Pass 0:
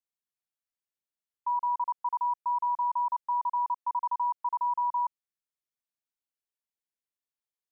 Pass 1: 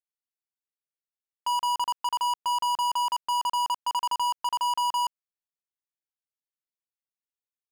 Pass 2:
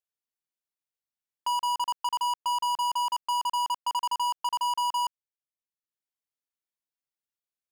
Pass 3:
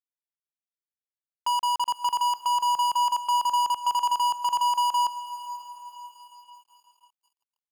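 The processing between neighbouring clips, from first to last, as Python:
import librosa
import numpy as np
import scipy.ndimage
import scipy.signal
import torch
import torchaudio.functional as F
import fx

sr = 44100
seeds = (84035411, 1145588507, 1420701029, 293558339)

y1 = fx.leveller(x, sr, passes=5)
y2 = fx.transient(y1, sr, attack_db=1, sustain_db=-8)
y2 = y2 * librosa.db_to_amplitude(-1.5)
y3 = fx.echo_diffused(y2, sr, ms=505, feedback_pct=57, wet_db=-14.0)
y3 = np.sign(y3) * np.maximum(np.abs(y3) - 10.0 ** (-53.0 / 20.0), 0.0)
y3 = y3 * librosa.db_to_amplitude(3.0)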